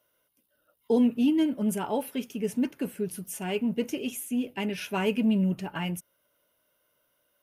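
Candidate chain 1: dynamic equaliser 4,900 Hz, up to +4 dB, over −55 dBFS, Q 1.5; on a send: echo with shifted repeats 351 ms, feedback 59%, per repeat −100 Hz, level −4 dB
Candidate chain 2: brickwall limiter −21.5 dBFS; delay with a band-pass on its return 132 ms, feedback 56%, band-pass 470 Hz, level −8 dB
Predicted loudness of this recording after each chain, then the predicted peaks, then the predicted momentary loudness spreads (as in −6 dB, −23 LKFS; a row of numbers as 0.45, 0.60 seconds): −27.0, −30.5 LKFS; −11.5, −18.0 dBFS; 14, 7 LU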